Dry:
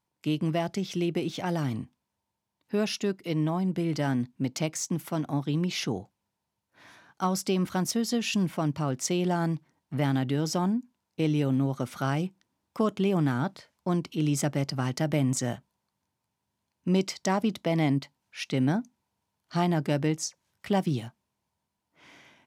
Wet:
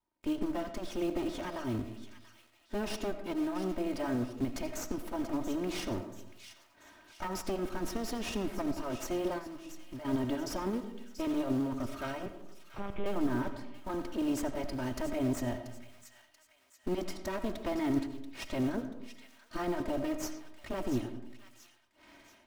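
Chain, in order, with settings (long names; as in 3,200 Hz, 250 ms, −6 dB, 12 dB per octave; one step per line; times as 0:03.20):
lower of the sound and its delayed copy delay 3.2 ms
floating-point word with a short mantissa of 2 bits
0:12.26–0:13.06: one-pitch LPC vocoder at 8 kHz 200 Hz
brickwall limiter −24.5 dBFS, peak gain reduction 7.5 dB
on a send at −9 dB: convolution reverb RT60 0.85 s, pre-delay 45 ms
0:09.38–0:10.05: on the sum: downward compressor, threshold −41 dBFS, peak gain reduction 11 dB
high-shelf EQ 2,000 Hz −8 dB
delay with a high-pass on its return 684 ms, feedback 47%, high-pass 1,900 Hz, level −10.5 dB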